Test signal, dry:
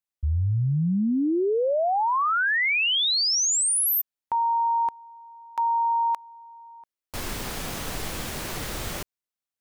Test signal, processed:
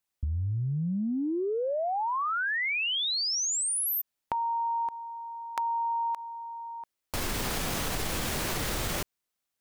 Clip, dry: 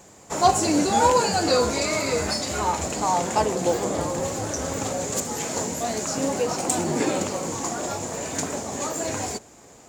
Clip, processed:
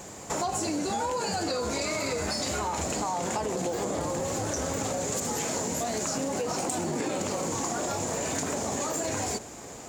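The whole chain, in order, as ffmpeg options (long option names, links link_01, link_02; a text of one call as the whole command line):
ffmpeg -i in.wav -af "acompressor=threshold=-36dB:ratio=10:attack=16:release=40:knee=6:detection=rms,volume=6.5dB" out.wav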